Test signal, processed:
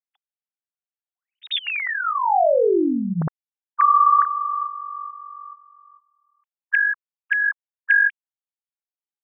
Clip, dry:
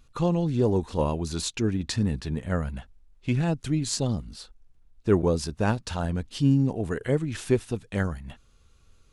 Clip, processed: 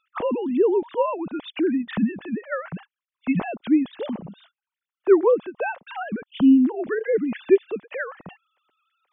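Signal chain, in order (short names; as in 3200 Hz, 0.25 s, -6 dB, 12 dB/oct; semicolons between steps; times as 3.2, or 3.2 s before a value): sine-wave speech; gain +3.5 dB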